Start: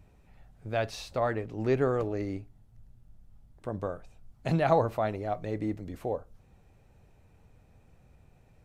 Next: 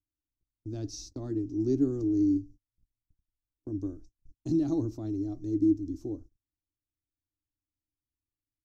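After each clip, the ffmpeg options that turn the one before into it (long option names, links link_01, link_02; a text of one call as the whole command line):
ffmpeg -i in.wav -af "firequalizer=gain_entry='entry(110,0);entry(190,-13);entry(300,14);entry(480,-21);entry(2200,-29);entry(5700,7);entry(8900,-12)':delay=0.05:min_phase=1,agate=range=-37dB:threshold=-46dB:ratio=16:detection=peak" out.wav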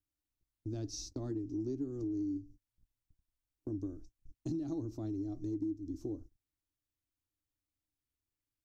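ffmpeg -i in.wav -af "acompressor=threshold=-35dB:ratio=6" out.wav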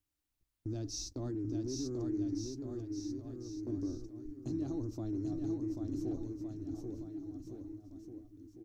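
ffmpeg -i in.wav -af "alimiter=level_in=11dB:limit=-24dB:level=0:latency=1:release=15,volume=-11dB,aeval=exprs='0.0188*(cos(1*acos(clip(val(0)/0.0188,-1,1)))-cos(1*PI/2))+0.000119*(cos(8*acos(clip(val(0)/0.0188,-1,1)))-cos(8*PI/2))':channel_layout=same,aecho=1:1:790|1462|2032|2517|2930:0.631|0.398|0.251|0.158|0.1,volume=3.5dB" out.wav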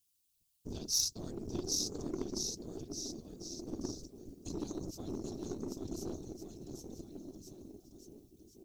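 ffmpeg -i in.wav -af "afftfilt=real='hypot(re,im)*cos(2*PI*random(0))':imag='hypot(re,im)*sin(2*PI*random(1))':win_size=512:overlap=0.75,aeval=exprs='0.0335*(cos(1*acos(clip(val(0)/0.0335,-1,1)))-cos(1*PI/2))+0.00473*(cos(3*acos(clip(val(0)/0.0335,-1,1)))-cos(3*PI/2))+0.00168*(cos(6*acos(clip(val(0)/0.0335,-1,1)))-cos(6*PI/2))':channel_layout=same,aexciter=amount=6.2:drive=3.3:freq=2700,volume=5dB" out.wav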